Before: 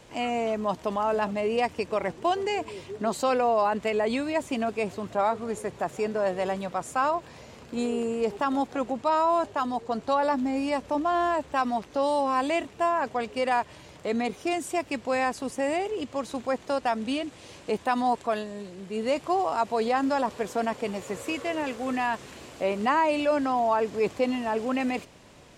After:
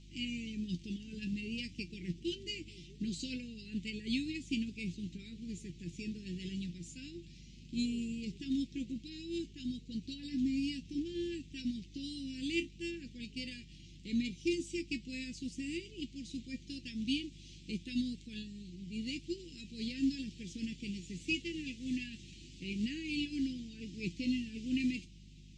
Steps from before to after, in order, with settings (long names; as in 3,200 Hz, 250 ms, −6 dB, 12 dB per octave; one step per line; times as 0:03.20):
inverse Chebyshev band-stop filter 610–1,300 Hz, stop band 60 dB
mains hum 50 Hz, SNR 12 dB
low-pass filter 6,800 Hz 24 dB per octave
tuned comb filter 170 Hz, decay 0.15 s, harmonics all, mix 80%
expander for the loud parts 1.5 to 1, over −49 dBFS
level +8 dB